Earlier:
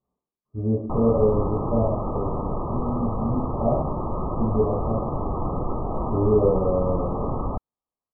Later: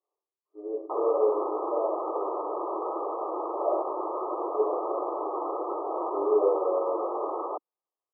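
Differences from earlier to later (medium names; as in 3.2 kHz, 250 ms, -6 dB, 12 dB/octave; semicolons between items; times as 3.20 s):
speech -3.5 dB; master: add brick-wall FIR high-pass 310 Hz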